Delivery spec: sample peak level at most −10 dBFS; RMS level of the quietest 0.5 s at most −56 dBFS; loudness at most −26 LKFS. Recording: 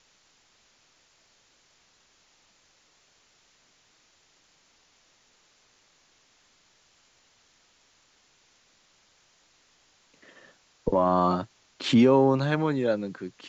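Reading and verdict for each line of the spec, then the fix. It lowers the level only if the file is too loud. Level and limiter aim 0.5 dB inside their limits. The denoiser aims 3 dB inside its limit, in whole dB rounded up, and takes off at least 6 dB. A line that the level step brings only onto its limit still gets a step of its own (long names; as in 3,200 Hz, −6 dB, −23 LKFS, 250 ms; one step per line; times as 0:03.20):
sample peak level −9.0 dBFS: out of spec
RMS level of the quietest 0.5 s −64 dBFS: in spec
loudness −24.0 LKFS: out of spec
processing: level −2.5 dB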